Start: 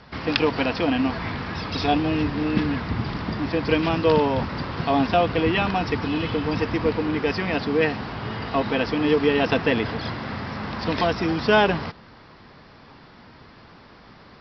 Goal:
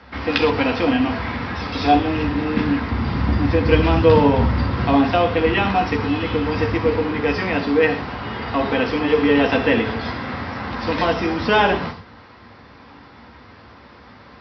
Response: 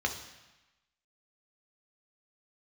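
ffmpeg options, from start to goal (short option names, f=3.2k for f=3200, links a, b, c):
-filter_complex "[0:a]asettb=1/sr,asplit=3[a][b][c];[a]atrim=end=3.024[d];[b]atrim=start=3.02:end=4.94,asetpts=PTS-STARTPTS,afade=t=in:d=0.004:c=qsin,afade=t=out:st=1.916:d=0.004:c=qsin,lowshelf=f=200:g=9.5[e];[c]atrim=start=4.936[f];[d][e]acrossfade=d=0.004:c1=hsin:c2=qsin[g];[g][f]acrossfade=d=0.004:c1=qsin:c2=hsin[h];[1:a]atrim=start_sample=2205,atrim=end_sample=6174[i];[h][i]afir=irnorm=-1:irlink=0,volume=-3dB"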